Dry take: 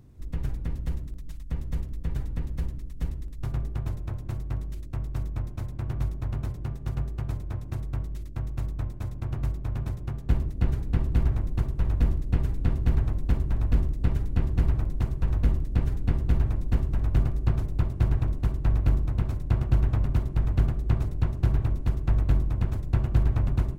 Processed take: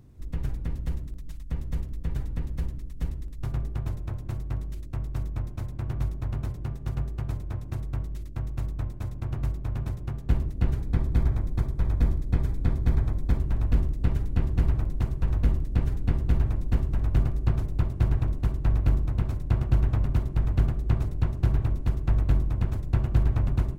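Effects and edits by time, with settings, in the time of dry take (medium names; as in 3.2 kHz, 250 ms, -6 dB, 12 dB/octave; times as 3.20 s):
10.83–13.38 s: Butterworth band-stop 2.8 kHz, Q 8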